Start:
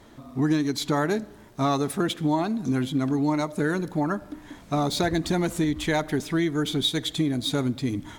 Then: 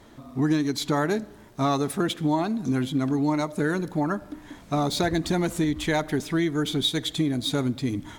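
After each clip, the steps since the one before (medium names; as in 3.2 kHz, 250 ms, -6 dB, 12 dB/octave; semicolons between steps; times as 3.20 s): no audible change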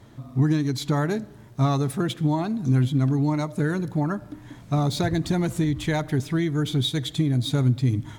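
peaking EQ 120 Hz +15 dB 0.82 oct; trim -2.5 dB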